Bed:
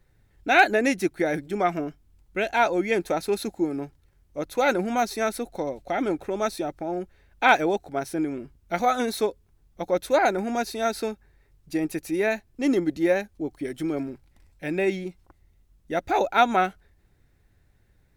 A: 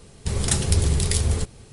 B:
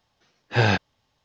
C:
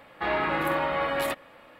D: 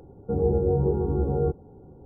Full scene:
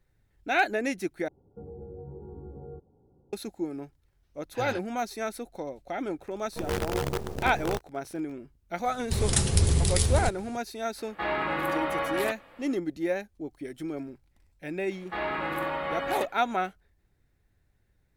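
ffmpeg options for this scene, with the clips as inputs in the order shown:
-filter_complex "[4:a]asplit=2[a][b];[3:a]asplit=2[c][d];[0:a]volume=-7dB[e];[a]alimiter=limit=-20.5dB:level=0:latency=1:release=111[f];[b]acrusher=bits=4:dc=4:mix=0:aa=0.000001[g];[e]asplit=2[h][i];[h]atrim=end=1.284[j];[f]atrim=end=2.05,asetpts=PTS-STARTPTS,volume=-14.5dB[k];[i]atrim=start=3.326[l];[2:a]atrim=end=1.24,asetpts=PTS-STARTPTS,volume=-18dB,afade=t=in:d=0.004:c=hsin,afade=t=out:st=1.236:d=0.004:c=hsin,adelay=4020[m];[g]atrim=end=2.05,asetpts=PTS-STARTPTS,volume=-8dB,afade=t=in:d=0.004:c=hsin,afade=t=out:st=2.046:d=0.004:c=hsin,adelay=6270[n];[1:a]atrim=end=1.72,asetpts=PTS-STARTPTS,volume=-2.5dB,afade=t=in:d=0.004:c=hsin,afade=t=out:st=1.716:d=0.004:c=hsin,adelay=8850[o];[c]atrim=end=1.79,asetpts=PTS-STARTPTS,volume=-2.5dB,afade=t=in:d=0.004:c=hsin,afade=t=out:st=1.786:d=0.004:c=hsin,adelay=484218S[p];[d]atrim=end=1.79,asetpts=PTS-STARTPTS,volume=-4.5dB,afade=t=in:d=0.004:c=hsin,afade=t=out:st=1.786:d=0.004:c=hsin,adelay=14910[q];[j][k]acrossfade=d=0.004:c1=hsin:c2=hsin[r];[r][l]acrossfade=d=0.004:c1=hsin:c2=hsin[s];[s][m][n][o][p][q]amix=inputs=6:normalize=0"

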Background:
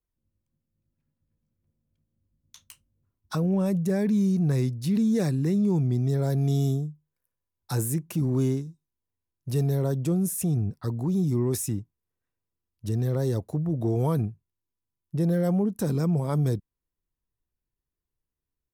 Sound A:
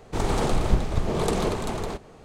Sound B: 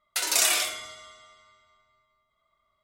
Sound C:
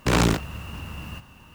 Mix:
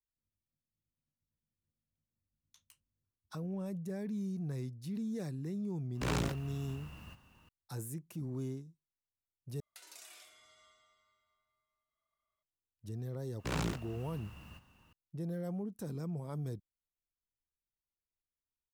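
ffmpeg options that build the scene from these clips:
-filter_complex "[3:a]asplit=2[a][b];[0:a]volume=-15dB[c];[2:a]acompressor=threshold=-44dB:ratio=2.5:attack=46:release=232:knee=1:detection=rms[d];[c]asplit=2[e][f];[e]atrim=end=9.604[g];[d]atrim=end=2.83,asetpts=PTS-STARTPTS,volume=-17dB[h];[f]atrim=start=12.426[i];[a]atrim=end=1.54,asetpts=PTS-STARTPTS,volume=-14.5dB,afade=t=in:d=0.004:c=hsin,afade=t=out:st=1.536:d=0.004:c=hsin,adelay=5950[j];[b]atrim=end=1.54,asetpts=PTS-STARTPTS,volume=-16dB,afade=t=in:d=0.004:c=hsin,afade=t=out:st=1.536:d=0.004:c=hsin,adelay=13390[k];[g][h]acrossfade=d=0.004:c1=hsin:c2=hsin[l];[l][i]acrossfade=d=0.004:c1=hsin:c2=hsin[m];[m][j][k]amix=inputs=3:normalize=0"

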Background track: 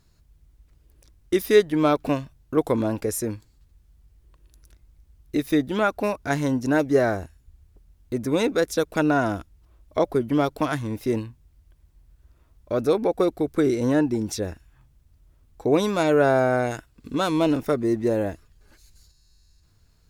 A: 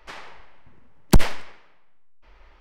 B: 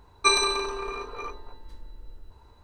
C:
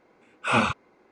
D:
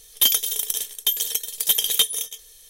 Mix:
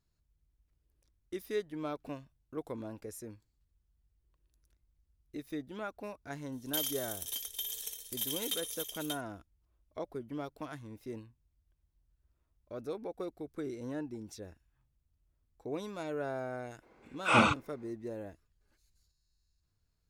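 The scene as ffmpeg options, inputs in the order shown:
-filter_complex "[0:a]volume=-18.5dB[a];[4:a]aecho=1:1:59|115|585:0.562|0.282|0.596,atrim=end=2.69,asetpts=PTS-STARTPTS,volume=-18dB,afade=t=in:d=0.004:c=hsin,afade=t=out:st=2.686:d=0.004:c=hsin,adelay=6520[b];[3:a]atrim=end=1.11,asetpts=PTS-STARTPTS,volume=-2.5dB,afade=t=in:d=0.02,afade=t=out:st=1.09:d=0.02,adelay=16810[c];[a][b][c]amix=inputs=3:normalize=0"

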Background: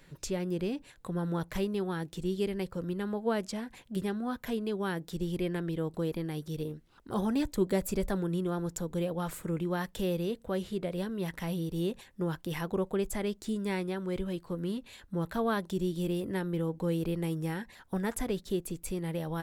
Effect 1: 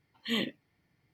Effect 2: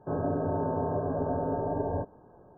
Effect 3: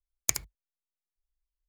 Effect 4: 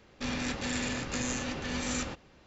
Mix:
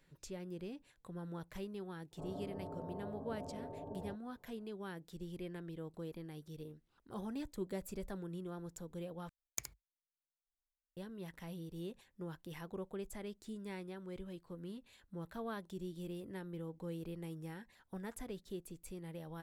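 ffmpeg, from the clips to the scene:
-filter_complex "[0:a]volume=-13dB[a];[2:a]lowpass=f=1.2k:w=0.5412,lowpass=f=1.2k:w=1.3066[b];[a]asplit=2[c][d];[c]atrim=end=9.294[e];[3:a]atrim=end=1.68,asetpts=PTS-STARTPTS,volume=-14.5dB[f];[d]atrim=start=10.966[g];[b]atrim=end=2.57,asetpts=PTS-STARTPTS,volume=-17dB,afade=t=in:d=0.004:c=hsin,afade=t=out:st=2.566:d=0.004:c=hsin,adelay=2110[h];[e][f]acrossfade=d=0.004:c1=hsin:c2=hsin[i];[i][g]acrossfade=d=0.004:c1=hsin:c2=hsin[j];[j][h]amix=inputs=2:normalize=0"

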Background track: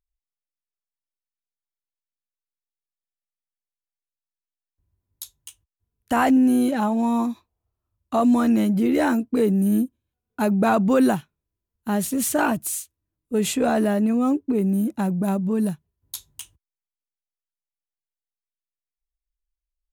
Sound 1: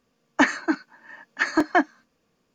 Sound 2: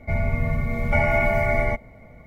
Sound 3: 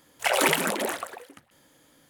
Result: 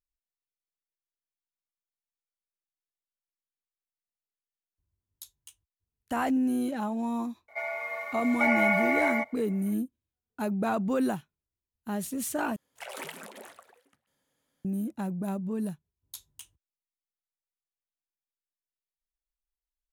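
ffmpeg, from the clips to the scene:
-filter_complex "[0:a]volume=-9.5dB[a];[2:a]highpass=f=650:w=0.5412,highpass=f=650:w=1.3066[b];[3:a]bandreject=f=320:w=5.7[c];[a]asplit=2[d][e];[d]atrim=end=12.564[f];[c]atrim=end=2.09,asetpts=PTS-STARTPTS,volume=-18dB[g];[e]atrim=start=14.646[h];[b]atrim=end=2.26,asetpts=PTS-STARTPTS,volume=-1.5dB,afade=t=in:d=0.004:c=hsin,afade=t=out:st=2.256:d=0.004:c=hsin,adelay=7480[i];[f][g]acrossfade=d=0.004:c1=hsin:c2=hsin[j];[j][h]acrossfade=d=0.004:c1=hsin:c2=hsin[k];[k][i]amix=inputs=2:normalize=0"

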